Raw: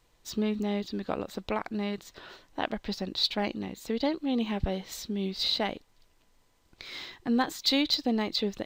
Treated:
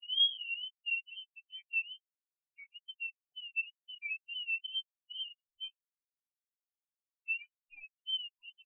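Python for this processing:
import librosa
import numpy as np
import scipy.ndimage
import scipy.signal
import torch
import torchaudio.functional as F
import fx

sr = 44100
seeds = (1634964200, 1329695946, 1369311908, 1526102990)

y = fx.tape_start_head(x, sr, length_s=1.27)
y = y + 0.8 * np.pad(y, (int(5.4 * sr / 1000.0), 0))[:len(y)]
y = fx.level_steps(y, sr, step_db=17)
y = fx.freq_invert(y, sr, carrier_hz=3100)
y = fx.wow_flutter(y, sr, seeds[0], rate_hz=2.1, depth_cents=130.0)
y = fx.lpc_vocoder(y, sr, seeds[1], excitation='pitch_kept', order=16)
y = fx.spectral_expand(y, sr, expansion=4.0)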